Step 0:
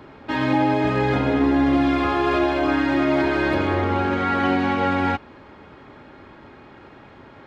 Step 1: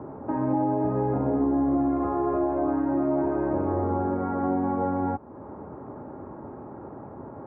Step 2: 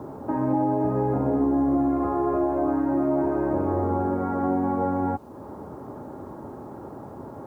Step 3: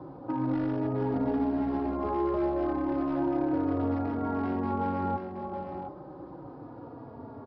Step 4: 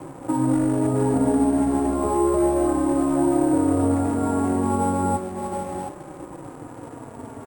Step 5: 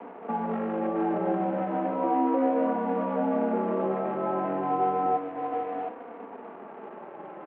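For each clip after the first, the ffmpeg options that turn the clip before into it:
ffmpeg -i in.wav -af "highpass=76,acompressor=threshold=-36dB:ratio=2,lowpass=frequency=1000:width=0.5412,lowpass=frequency=1000:width=1.3066,volume=6dB" out.wav
ffmpeg -i in.wav -af "acrusher=bits=10:mix=0:aa=0.000001,volume=1.5dB" out.wav
ffmpeg -i in.wav -filter_complex "[0:a]aresample=11025,volume=18.5dB,asoftclip=hard,volume=-18.5dB,aresample=44100,aecho=1:1:722:0.473,asplit=2[link_01][link_02];[link_02]adelay=3.5,afreqshift=-0.32[link_03];[link_01][link_03]amix=inputs=2:normalize=1,volume=-3dB" out.wav
ffmpeg -i in.wav -filter_complex "[0:a]acrossover=split=1200[link_01][link_02];[link_01]aeval=exprs='sgn(val(0))*max(abs(val(0))-0.00251,0)':channel_layout=same[link_03];[link_02]alimiter=level_in=20.5dB:limit=-24dB:level=0:latency=1:release=363,volume=-20.5dB[link_04];[link_03][link_04]amix=inputs=2:normalize=0,acrusher=samples=5:mix=1:aa=0.000001,volume=9dB" out.wav
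ffmpeg -i in.wav -af "highpass=frequency=420:width_type=q:width=0.5412,highpass=frequency=420:width_type=q:width=1.307,lowpass=frequency=2900:width_type=q:width=0.5176,lowpass=frequency=2900:width_type=q:width=0.7071,lowpass=frequency=2900:width_type=q:width=1.932,afreqshift=-85" out.wav

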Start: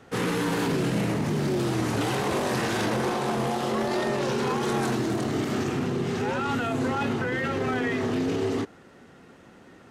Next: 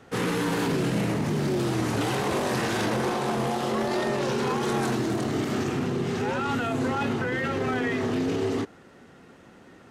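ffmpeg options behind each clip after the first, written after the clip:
ffmpeg -i in.wav -af anull out.wav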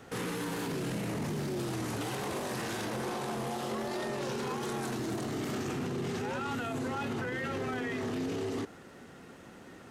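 ffmpeg -i in.wav -af "highshelf=frequency=7900:gain=8,alimiter=level_in=3.5dB:limit=-24dB:level=0:latency=1:release=24,volume=-3.5dB" out.wav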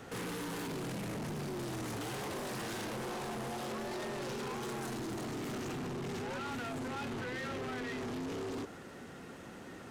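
ffmpeg -i in.wav -af "asoftclip=type=tanh:threshold=-39.5dB,volume=2.5dB" out.wav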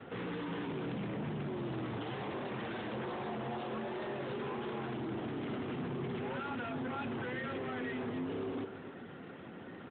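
ffmpeg -i in.wav -af "aecho=1:1:267:0.282,volume=1dB" -ar 8000 -c:a libopencore_amrnb -b:a 12200 out.amr

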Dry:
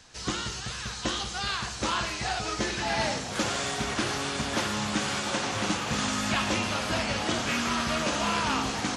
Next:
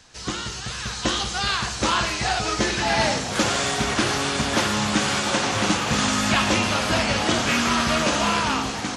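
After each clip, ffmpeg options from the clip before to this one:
ffmpeg -i in.wav -af "dynaudnorm=framelen=140:gausssize=11:maxgain=5dB,volume=2dB" out.wav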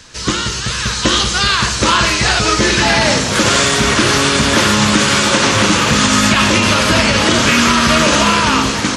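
ffmpeg -i in.wav -af "equalizer=frequency=760:width=6.9:gain=-13,alimiter=level_in=13dB:limit=-1dB:release=50:level=0:latency=1,volume=-1dB" out.wav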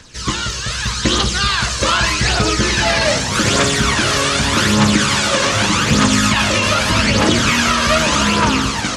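ffmpeg -i in.wav -af "aphaser=in_gain=1:out_gain=1:delay=1.9:decay=0.49:speed=0.83:type=triangular,volume=-4dB" out.wav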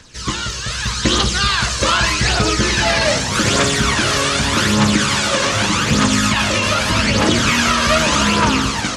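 ffmpeg -i in.wav -af "dynaudnorm=framelen=590:gausssize=3:maxgain=11.5dB,volume=-2dB" out.wav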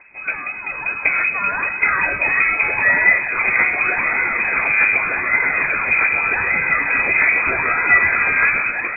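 ffmpeg -i in.wav -af "equalizer=frequency=250:width_type=o:width=0.67:gain=-4,equalizer=frequency=630:width_type=o:width=0.67:gain=7,equalizer=frequency=1600:width_type=o:width=0.67:gain=-7,lowpass=frequency=2200:width_type=q:width=0.5098,lowpass=frequency=2200:width_type=q:width=0.6013,lowpass=frequency=2200:width_type=q:width=0.9,lowpass=frequency=2200:width_type=q:width=2.563,afreqshift=-2600" out.wav

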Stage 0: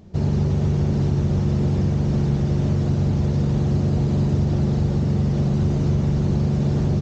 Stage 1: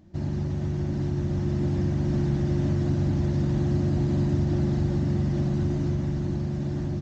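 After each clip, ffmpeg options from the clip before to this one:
ffmpeg -i in.wav -af "dynaudnorm=framelen=230:gausssize=13:maxgain=4dB,superequalizer=6b=2:7b=0.355:11b=1.58,volume=-8.5dB" out.wav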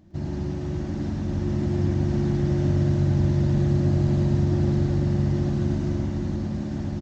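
ffmpeg -i in.wav -af "aecho=1:1:107.9|256.6:0.708|0.316" out.wav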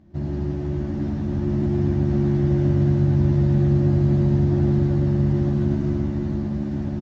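ffmpeg -i in.wav -filter_complex "[0:a]lowpass=frequency=2400:poles=1,asplit=2[link_01][link_02];[link_02]adelay=14,volume=-4dB[link_03];[link_01][link_03]amix=inputs=2:normalize=0" out.wav

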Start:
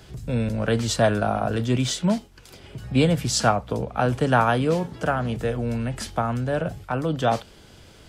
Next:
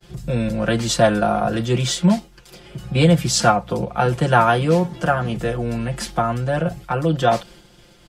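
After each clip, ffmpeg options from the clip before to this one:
ffmpeg -i in.wav -af "aecho=1:1:5.7:0.89,agate=range=-33dB:threshold=-41dB:ratio=3:detection=peak,volume=2dB" out.wav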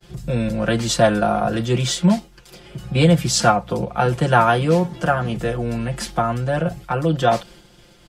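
ffmpeg -i in.wav -af anull out.wav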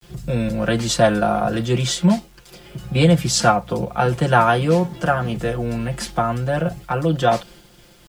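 ffmpeg -i in.wav -af "acrusher=bits=8:mix=0:aa=0.000001" out.wav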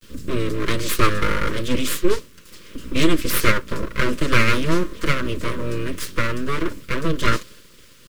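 ffmpeg -i in.wav -af "aeval=exprs='abs(val(0))':channel_layout=same,asuperstop=centerf=770:order=4:qfactor=1.6,volume=2dB" out.wav

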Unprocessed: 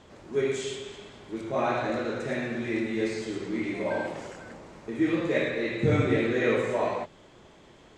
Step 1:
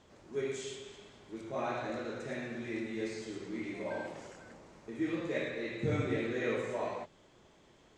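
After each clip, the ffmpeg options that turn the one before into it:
ffmpeg -i in.wav -af "equalizer=frequency=6200:width=1.4:gain=3.5,volume=-9dB" out.wav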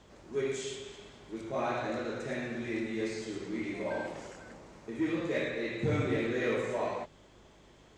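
ffmpeg -i in.wav -filter_complex "[0:a]aeval=exprs='val(0)+0.000447*(sin(2*PI*50*n/s)+sin(2*PI*2*50*n/s)/2+sin(2*PI*3*50*n/s)/3+sin(2*PI*4*50*n/s)/4+sin(2*PI*5*50*n/s)/5)':channel_layout=same,asplit=2[link_01][link_02];[link_02]asoftclip=type=hard:threshold=-31dB,volume=-3.5dB[link_03];[link_01][link_03]amix=inputs=2:normalize=0,volume=-1dB" out.wav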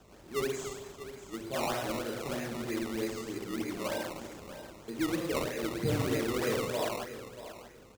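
ffmpeg -i in.wav -filter_complex "[0:a]aecho=1:1:637|1274|1911:0.224|0.0515|0.0118,acrossover=split=100|4400[link_01][link_02][link_03];[link_02]acrusher=samples=19:mix=1:aa=0.000001:lfo=1:lforange=19:lforate=3.2[link_04];[link_01][link_04][link_03]amix=inputs=3:normalize=0" out.wav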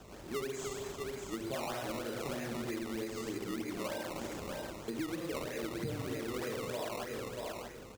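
ffmpeg -i in.wav -af "acompressor=threshold=-40dB:ratio=10,volume=5dB" out.wav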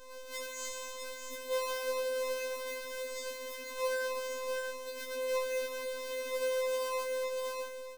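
ffmpeg -i in.wav -af "afftfilt=real='hypot(re,im)*cos(PI*b)':imag='0':win_size=1024:overlap=0.75,afftfilt=real='re*3.46*eq(mod(b,12),0)':imag='im*3.46*eq(mod(b,12),0)':win_size=2048:overlap=0.75,volume=4dB" out.wav

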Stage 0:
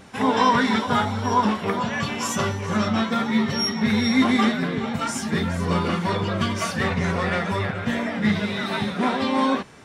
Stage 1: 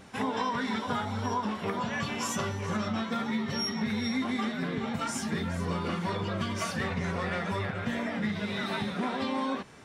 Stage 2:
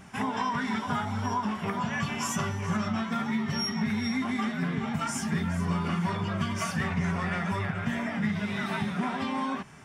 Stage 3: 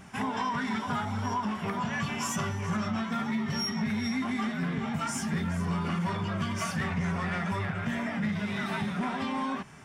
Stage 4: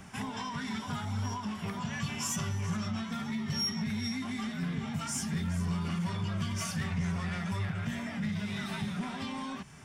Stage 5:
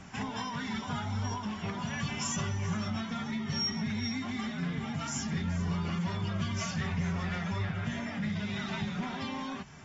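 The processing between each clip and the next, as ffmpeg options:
ffmpeg -i in.wav -af "acompressor=threshold=-23dB:ratio=6,volume=-4.5dB" out.wav
ffmpeg -i in.wav -af "equalizer=frequency=160:width_type=o:width=0.33:gain=6,equalizer=frequency=315:width_type=o:width=0.33:gain=-6,equalizer=frequency=500:width_type=o:width=0.33:gain=-12,equalizer=frequency=4000:width_type=o:width=0.33:gain=-10,volume=2dB" out.wav
ffmpeg -i in.wav -af "asoftclip=type=tanh:threshold=-22dB" out.wav
ffmpeg -i in.wav -filter_complex "[0:a]acrossover=split=170|3000[link_01][link_02][link_03];[link_02]acompressor=threshold=-58dB:ratio=1.5[link_04];[link_01][link_04][link_03]amix=inputs=3:normalize=0,volume=1.5dB" out.wav
ffmpeg -i in.wav -ar 48000 -c:a aac -b:a 24k out.aac

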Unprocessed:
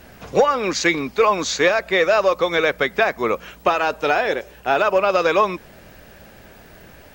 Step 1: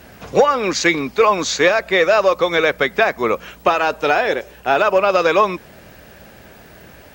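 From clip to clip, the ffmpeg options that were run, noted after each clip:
ffmpeg -i in.wav -af "highpass=47,volume=2.5dB" out.wav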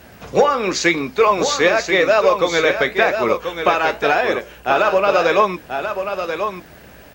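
ffmpeg -i in.wav -af "flanger=delay=9.5:depth=8.1:regen=-66:speed=0.92:shape=sinusoidal,aecho=1:1:1036:0.422,volume=3.5dB" out.wav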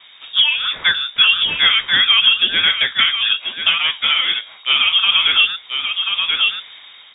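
ffmpeg -i in.wav -af "lowpass=frequency=3200:width_type=q:width=0.5098,lowpass=frequency=3200:width_type=q:width=0.6013,lowpass=frequency=3200:width_type=q:width=0.9,lowpass=frequency=3200:width_type=q:width=2.563,afreqshift=-3800,dynaudnorm=framelen=220:gausssize=7:maxgain=11.5dB,volume=-1dB" out.wav

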